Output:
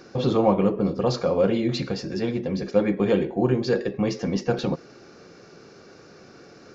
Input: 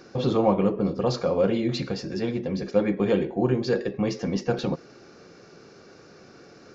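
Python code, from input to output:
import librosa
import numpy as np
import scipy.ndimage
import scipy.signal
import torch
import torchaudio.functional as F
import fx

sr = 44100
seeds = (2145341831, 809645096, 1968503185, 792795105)

y = fx.quant_float(x, sr, bits=8)
y = y * librosa.db_to_amplitude(1.5)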